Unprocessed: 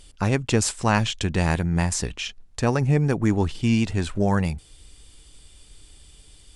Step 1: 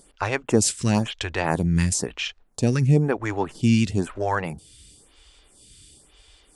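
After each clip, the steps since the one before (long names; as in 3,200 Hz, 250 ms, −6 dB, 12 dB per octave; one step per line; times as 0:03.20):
high-pass filter 76 Hz 6 dB per octave
phaser with staggered stages 1 Hz
level +4 dB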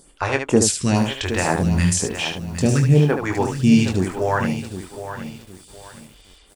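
on a send: ambience of single reflections 22 ms −7 dB, 74 ms −6.5 dB
on the sum: feedback echo at a low word length 765 ms, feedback 35%, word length 7 bits, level −10.5 dB
level +2 dB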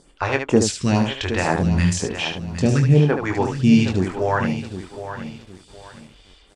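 low-pass filter 5,600 Hz 12 dB per octave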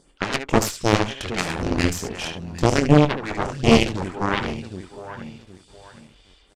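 harmonic generator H 4 −6 dB, 7 −11 dB, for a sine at −2.5 dBFS
downsampling to 32,000 Hz
level −3.5 dB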